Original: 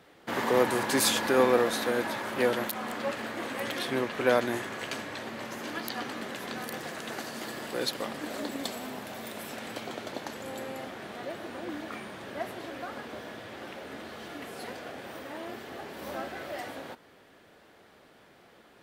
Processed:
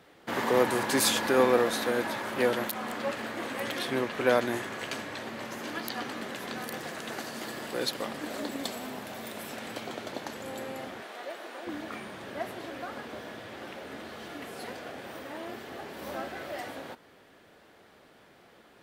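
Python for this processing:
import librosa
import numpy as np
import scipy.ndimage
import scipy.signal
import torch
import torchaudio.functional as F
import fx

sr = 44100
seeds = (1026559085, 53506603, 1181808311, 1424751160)

y = fx.highpass(x, sr, hz=460.0, slope=12, at=(11.02, 11.67))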